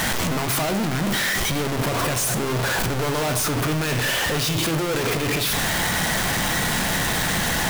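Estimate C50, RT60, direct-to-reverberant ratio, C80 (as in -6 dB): 10.0 dB, 1.0 s, 7.5 dB, 12.5 dB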